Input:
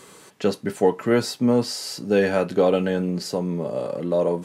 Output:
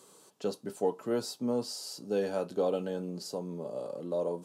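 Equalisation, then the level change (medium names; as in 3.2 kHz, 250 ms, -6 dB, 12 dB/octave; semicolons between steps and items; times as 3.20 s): high-pass 94 Hz; bass shelf 250 Hz -9 dB; peaking EQ 2 kHz -14.5 dB 1 oct; -8.0 dB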